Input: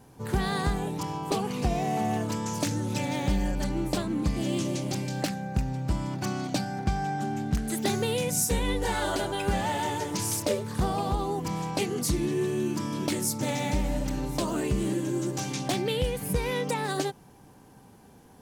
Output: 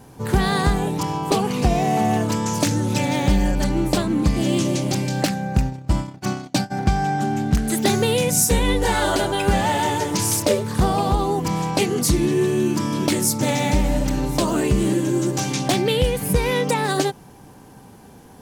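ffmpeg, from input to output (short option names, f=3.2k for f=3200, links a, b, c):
-filter_complex "[0:a]asplit=3[a][b][c];[a]afade=t=out:st=5.59:d=0.02[d];[b]agate=range=-26dB:threshold=-29dB:ratio=16:detection=peak,afade=t=in:st=5.59:d=0.02,afade=t=out:st=6.7:d=0.02[e];[c]afade=t=in:st=6.7:d=0.02[f];[d][e][f]amix=inputs=3:normalize=0,volume=8.5dB"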